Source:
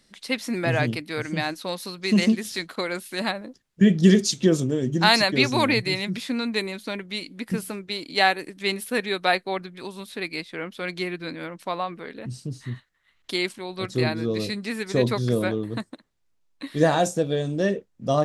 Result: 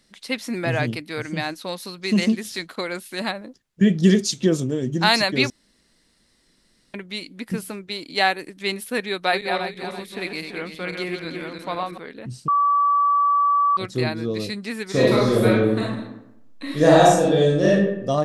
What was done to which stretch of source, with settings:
0:05.50–0:06.94: fill with room tone
0:09.08–0:11.98: feedback delay that plays each chunk backwards 167 ms, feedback 57%, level −5 dB
0:12.48–0:13.77: beep over 1,150 Hz −15 dBFS
0:14.89–0:17.92: thrown reverb, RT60 0.85 s, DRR −6 dB

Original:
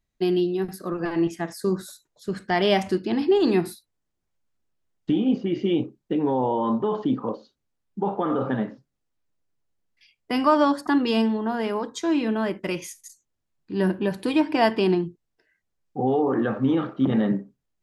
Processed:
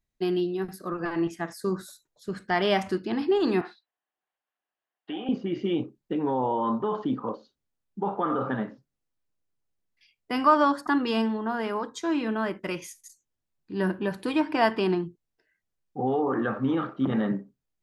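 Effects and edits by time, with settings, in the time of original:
0:03.61–0:05.29: loudspeaker in its box 480–3,600 Hz, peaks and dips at 750 Hz +9 dB, 1,100 Hz +5 dB, 1,700 Hz +8 dB, 2,900 Hz +5 dB
whole clip: dynamic equaliser 1,300 Hz, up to +7 dB, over −42 dBFS, Q 1.4; level −4.5 dB

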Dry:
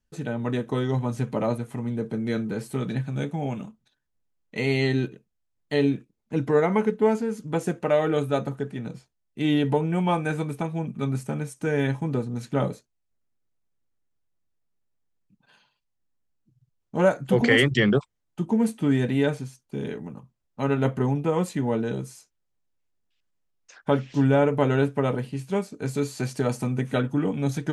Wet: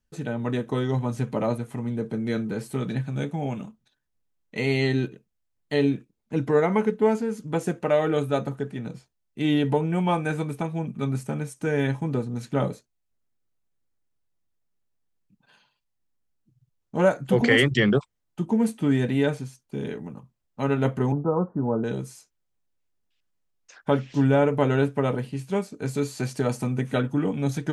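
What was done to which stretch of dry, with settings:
0:21.12–0:21.84: Butterworth low-pass 1,400 Hz 72 dB per octave

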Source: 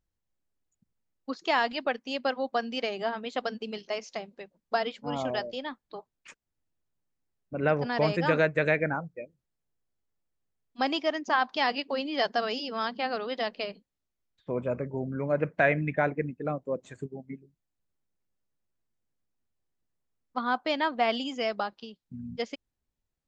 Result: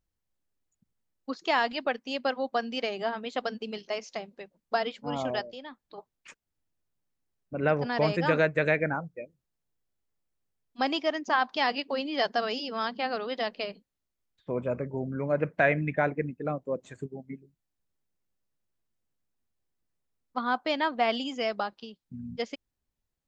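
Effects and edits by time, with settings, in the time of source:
0:05.41–0:05.98: downward compressor 1.5 to 1, threshold −50 dBFS

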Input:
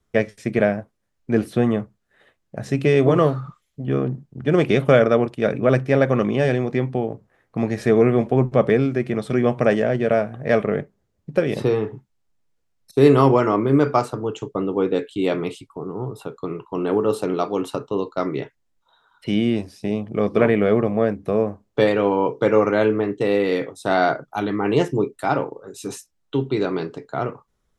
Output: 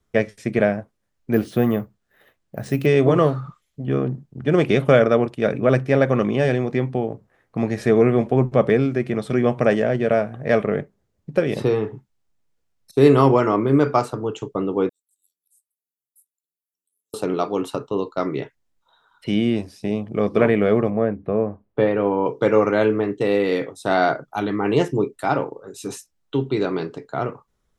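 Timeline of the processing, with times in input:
0:01.33–0:02.86: bad sample-rate conversion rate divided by 3×, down none, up hold
0:14.89–0:17.14: inverse Chebyshev high-pass filter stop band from 2,200 Hz, stop band 80 dB
0:20.90–0:22.26: high-frequency loss of the air 480 metres

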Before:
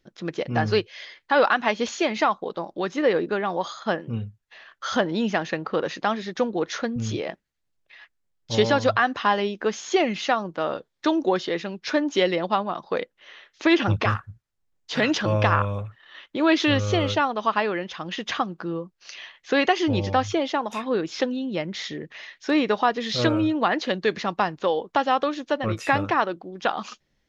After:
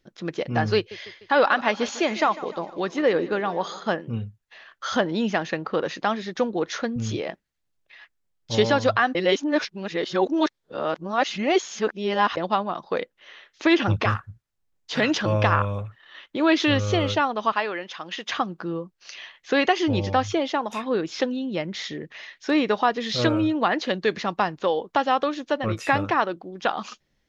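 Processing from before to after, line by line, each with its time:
0:00.76–0:03.94: repeating echo 150 ms, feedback 54%, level −17 dB
0:09.15–0:12.37: reverse
0:17.52–0:18.33: high-pass filter 550 Hz 6 dB per octave

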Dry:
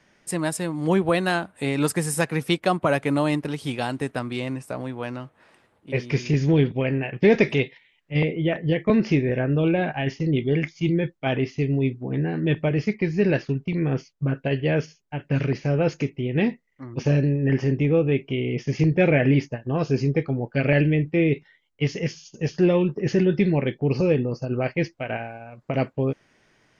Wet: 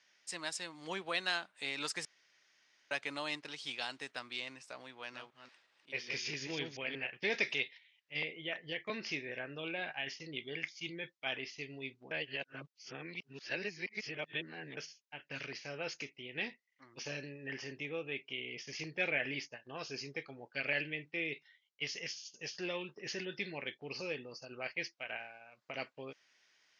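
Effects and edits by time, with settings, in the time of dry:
0:02.05–0:02.91: fill with room tone
0:04.94–0:07.07: delay that plays each chunk backwards 183 ms, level −5 dB
0:12.11–0:14.77: reverse
whole clip: low-pass filter 5,600 Hz 24 dB per octave; first difference; level +3 dB

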